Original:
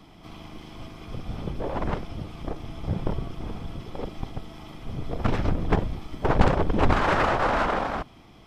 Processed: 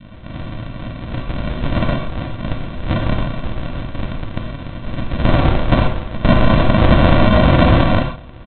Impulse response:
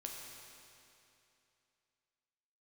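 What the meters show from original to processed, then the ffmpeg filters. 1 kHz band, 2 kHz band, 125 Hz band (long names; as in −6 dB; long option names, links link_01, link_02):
+6.0 dB, +8.0 dB, +13.0 dB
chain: -filter_complex "[0:a]tiltshelf=frequency=1300:gain=-10,aresample=8000,acrusher=samples=19:mix=1:aa=0.000001,aresample=44100[link_01];[1:a]atrim=start_sample=2205,atrim=end_sample=6174[link_02];[link_01][link_02]afir=irnorm=-1:irlink=0,adynamicequalizer=threshold=0.00447:dfrequency=750:dqfactor=0.79:tfrequency=750:tqfactor=0.79:attack=5:release=100:ratio=0.375:range=2.5:mode=boostabove:tftype=bell,alimiter=level_in=23dB:limit=-1dB:release=50:level=0:latency=1,volume=-1dB"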